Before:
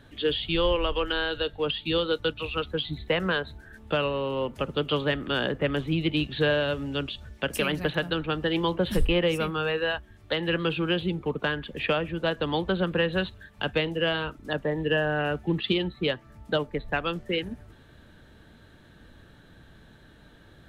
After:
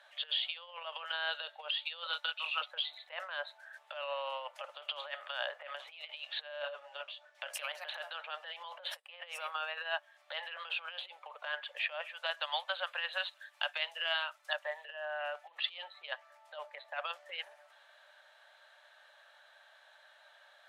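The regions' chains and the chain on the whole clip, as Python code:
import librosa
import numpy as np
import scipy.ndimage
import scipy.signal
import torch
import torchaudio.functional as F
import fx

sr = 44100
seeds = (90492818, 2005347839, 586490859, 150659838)

y = fx.chain(x, sr, fx.bessel_highpass(hz=860.0, order=2),
    fx.doubler(ms=26.0, db=-6.0), at=(2.06, 2.61))
y = fx.chain(y, sr, fx.tilt_eq(slope=-2.5),
    fx.detune_double(cents=18), at=(6.62, 7.35))
y = fx.chain(y, sr, fx.highpass(hz=1100.0, slope=6),
    fx.high_shelf(hz=5500.0, db=6.0), at=(12.01, 14.85))
y = fx.over_compress(y, sr, threshold_db=-29.0, ratio=-0.5)
y = scipy.signal.sosfilt(scipy.signal.cheby1(6, 1.0, 580.0, 'highpass', fs=sr, output='sos'), y)
y = fx.high_shelf(y, sr, hz=12000.0, db=-12.0)
y = y * librosa.db_to_amplitude(-4.5)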